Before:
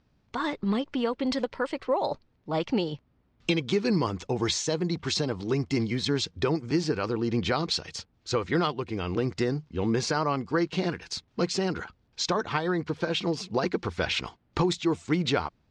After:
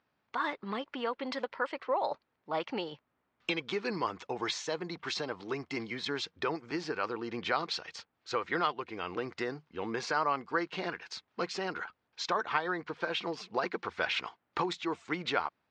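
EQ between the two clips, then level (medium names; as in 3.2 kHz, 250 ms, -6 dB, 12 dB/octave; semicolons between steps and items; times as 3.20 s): band-pass filter 1.4 kHz, Q 0.74; 0.0 dB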